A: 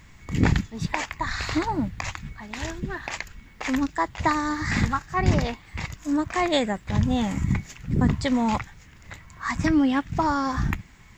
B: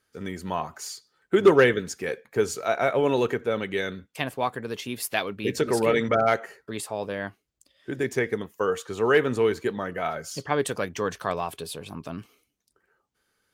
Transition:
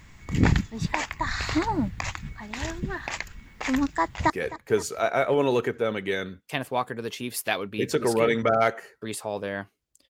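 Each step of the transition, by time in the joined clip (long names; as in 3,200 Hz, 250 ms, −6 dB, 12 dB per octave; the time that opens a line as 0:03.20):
A
0:04.01–0:04.30: delay throw 260 ms, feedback 65%, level −16.5 dB
0:04.30: continue with B from 0:01.96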